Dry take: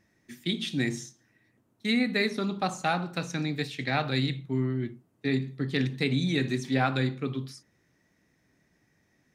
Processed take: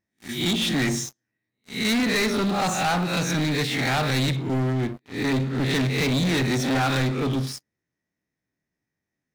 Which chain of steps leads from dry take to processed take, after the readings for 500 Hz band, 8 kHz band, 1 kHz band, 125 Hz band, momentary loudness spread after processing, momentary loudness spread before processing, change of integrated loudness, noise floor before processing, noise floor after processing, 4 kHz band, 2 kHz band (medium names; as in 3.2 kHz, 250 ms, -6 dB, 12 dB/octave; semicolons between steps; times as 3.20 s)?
+5.5 dB, +13.0 dB, +6.0 dB, +6.0 dB, 7 LU, 9 LU, +5.5 dB, -70 dBFS, -85 dBFS, +7.5 dB, +5.5 dB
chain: reverse spectral sustain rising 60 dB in 0.43 s; waveshaping leveller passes 5; trim -7.5 dB